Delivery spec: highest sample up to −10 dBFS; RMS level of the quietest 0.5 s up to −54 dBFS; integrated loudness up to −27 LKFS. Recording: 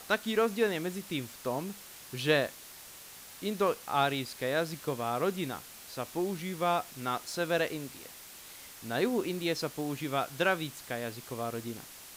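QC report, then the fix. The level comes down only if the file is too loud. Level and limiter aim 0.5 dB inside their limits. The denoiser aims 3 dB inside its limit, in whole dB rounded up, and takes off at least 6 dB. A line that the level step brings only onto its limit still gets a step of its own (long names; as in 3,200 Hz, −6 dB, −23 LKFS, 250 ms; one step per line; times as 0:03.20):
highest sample −13.0 dBFS: in spec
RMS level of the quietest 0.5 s −49 dBFS: out of spec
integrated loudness −32.5 LKFS: in spec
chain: broadband denoise 8 dB, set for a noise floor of −49 dBFS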